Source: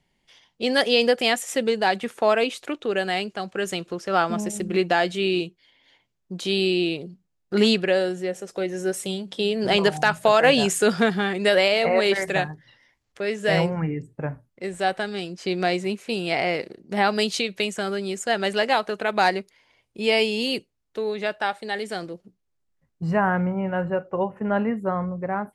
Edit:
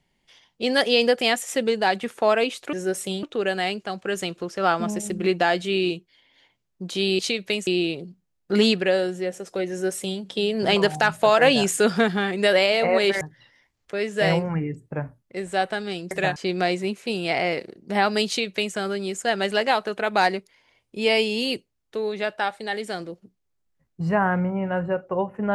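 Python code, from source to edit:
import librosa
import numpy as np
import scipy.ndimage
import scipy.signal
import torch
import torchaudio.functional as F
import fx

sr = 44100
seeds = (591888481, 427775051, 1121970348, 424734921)

y = fx.edit(x, sr, fx.duplicate(start_s=8.72, length_s=0.5, to_s=2.73),
    fx.move(start_s=12.23, length_s=0.25, to_s=15.38),
    fx.duplicate(start_s=17.29, length_s=0.48, to_s=6.69), tone=tone)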